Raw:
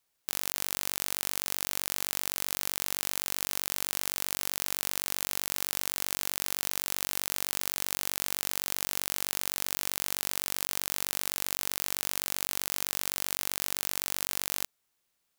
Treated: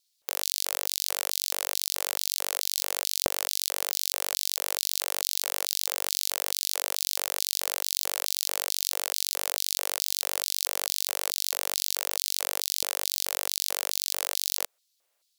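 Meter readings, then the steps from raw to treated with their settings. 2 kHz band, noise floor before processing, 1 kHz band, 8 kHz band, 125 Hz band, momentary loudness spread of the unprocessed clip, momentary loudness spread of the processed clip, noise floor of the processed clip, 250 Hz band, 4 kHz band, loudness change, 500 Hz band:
+0.5 dB, −78 dBFS, +2.5 dB, +4.0 dB, can't be measured, 0 LU, 0 LU, −74 dBFS, −5.0 dB, +6.0 dB, +3.0 dB, +6.0 dB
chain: auto-filter high-pass square 2.3 Hz 540–4,200 Hz
pitch vibrato 13 Hz 83 cents
level +2.5 dB

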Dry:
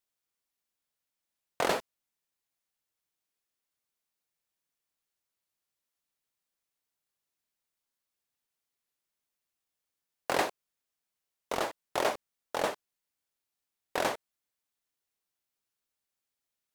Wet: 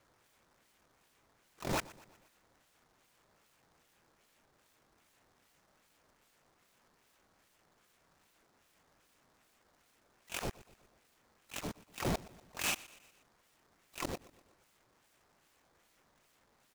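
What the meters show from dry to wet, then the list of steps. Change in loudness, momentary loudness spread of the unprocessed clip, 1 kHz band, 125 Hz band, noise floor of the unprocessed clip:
−6.5 dB, 11 LU, −10.5 dB, +7.0 dB, below −85 dBFS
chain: neighbouring bands swapped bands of 2,000 Hz
high-pass filter 150 Hz 12 dB per octave
in parallel at +2 dB: compressor whose output falls as the input rises −33 dBFS, ratio −1
on the sum: brickwall limiter −16 dBFS, peak gain reduction 8.5 dB
volume swells 479 ms
sample-and-hold swept by an LFO 9×, swing 160% 2.5 Hz
hard clipping −36.5 dBFS, distortion −10 dB
on a send: repeating echo 121 ms, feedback 52%, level −20 dB
on the sum: short delay modulated by noise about 4,000 Hz, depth 0.054 ms
level +7.5 dB

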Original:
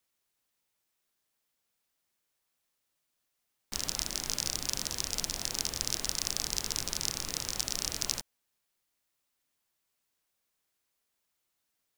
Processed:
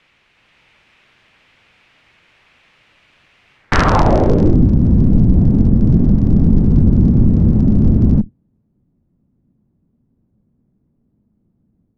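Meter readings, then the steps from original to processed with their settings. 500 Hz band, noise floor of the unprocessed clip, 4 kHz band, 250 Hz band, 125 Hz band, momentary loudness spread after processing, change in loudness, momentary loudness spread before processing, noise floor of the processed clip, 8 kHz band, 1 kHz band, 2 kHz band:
+27.0 dB, −81 dBFS, −4.0 dB, +36.5 dB, +36.5 dB, 2 LU, +19.5 dB, 3 LU, −64 dBFS, below −10 dB, +24.5 dB, +16.5 dB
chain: sub-octave generator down 1 octave, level +2 dB
low-pass filter sweep 2,500 Hz → 220 Hz, 0:03.54–0:04.66
automatic gain control gain up to 4 dB
boost into a limiter +27.5 dB
level −1 dB

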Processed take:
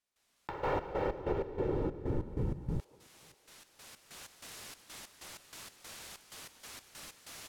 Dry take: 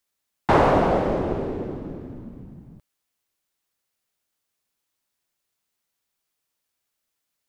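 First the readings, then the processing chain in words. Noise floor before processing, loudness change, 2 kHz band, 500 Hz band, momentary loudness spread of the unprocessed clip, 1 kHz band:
−80 dBFS, −17.5 dB, −13.0 dB, −12.0 dB, 21 LU, −16.0 dB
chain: camcorder AGC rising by 10 dB per second
comb filter 2.2 ms, depth 64%
dynamic equaliser 2,200 Hz, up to +4 dB, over −36 dBFS, Q 0.74
downward compressor 12 to 1, threshold −29 dBFS, peak gain reduction 19.5 dB
gate pattern ".xx.x.x.x" 95 BPM −12 dB
feedback echo with a band-pass in the loop 542 ms, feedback 47%, band-pass 820 Hz, level −21 dB
linearly interpolated sample-rate reduction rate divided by 2×
level +1 dB

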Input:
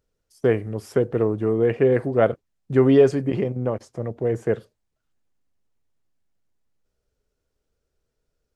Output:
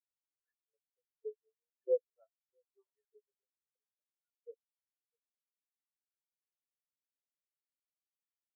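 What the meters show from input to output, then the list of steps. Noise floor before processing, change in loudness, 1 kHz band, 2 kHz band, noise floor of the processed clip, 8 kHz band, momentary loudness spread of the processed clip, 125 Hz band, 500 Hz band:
−79 dBFS, −17.0 dB, below −40 dB, below −40 dB, below −85 dBFS, can't be measured, 22 LU, below −40 dB, −22.0 dB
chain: adaptive Wiener filter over 41 samples
high-pass filter 310 Hz
high-shelf EQ 3,400 Hz +12 dB
auto-filter high-pass saw up 1.6 Hz 400–1,900 Hz
in parallel at 0 dB: downward compressor, threshold −31 dBFS, peak gain reduction 18 dB
on the sum: high-frequency loss of the air 380 metres
flanger 1.7 Hz, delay 4.8 ms, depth 1.1 ms, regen −78%
soft clipping −12.5 dBFS, distortion −20 dB
on a send: single-tap delay 654 ms −11.5 dB
on the sum: every bin expanded away from the loudest bin 4 to 1
level −8.5 dB

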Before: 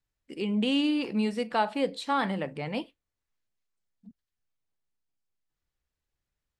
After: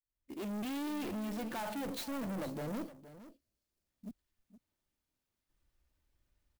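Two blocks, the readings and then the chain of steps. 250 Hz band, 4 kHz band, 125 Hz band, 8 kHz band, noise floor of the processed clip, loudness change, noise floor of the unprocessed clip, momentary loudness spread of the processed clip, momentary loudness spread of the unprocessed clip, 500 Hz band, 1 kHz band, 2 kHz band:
−9.5 dB, −13.5 dB, −7.5 dB, +1.5 dB, below −85 dBFS, −10.5 dB, below −85 dBFS, 16 LU, 10 LU, −10.5 dB, −13.0 dB, −12.0 dB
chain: fade in at the beginning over 0.94 s
gain on a spectral selection 0:02.01–0:03.87, 710–4,100 Hz −13 dB
low-shelf EQ 340 Hz +10 dB
comb filter 3.3 ms, depth 33%
brickwall limiter −22 dBFS, peak gain reduction 11.5 dB
asymmetric clip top −40.5 dBFS
bass and treble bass −3 dB, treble +4 dB
soft clipping −38.5 dBFS, distortion −10 dB
single-tap delay 467 ms −15 dB
converter with an unsteady clock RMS 0.034 ms
level +2 dB

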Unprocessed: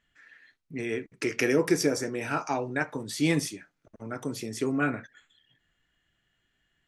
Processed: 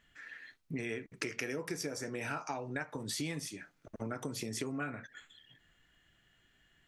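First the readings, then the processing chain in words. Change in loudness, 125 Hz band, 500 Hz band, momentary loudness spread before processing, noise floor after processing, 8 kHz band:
−10.5 dB, −8.5 dB, −12.0 dB, 13 LU, −71 dBFS, −6.0 dB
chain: dynamic equaliser 340 Hz, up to −5 dB, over −38 dBFS, Q 1.5
downward compressor 10 to 1, threshold −40 dBFS, peak gain reduction 18.5 dB
level +5 dB

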